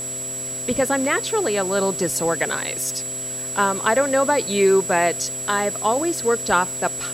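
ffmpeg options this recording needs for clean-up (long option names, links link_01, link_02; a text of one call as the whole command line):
ffmpeg -i in.wav -af "adeclick=threshold=4,bandreject=frequency=129.8:width_type=h:width=4,bandreject=frequency=259.6:width_type=h:width=4,bandreject=frequency=389.4:width_type=h:width=4,bandreject=frequency=519.2:width_type=h:width=4,bandreject=frequency=649:width_type=h:width=4,bandreject=frequency=7800:width=30,afwtdn=0.011" out.wav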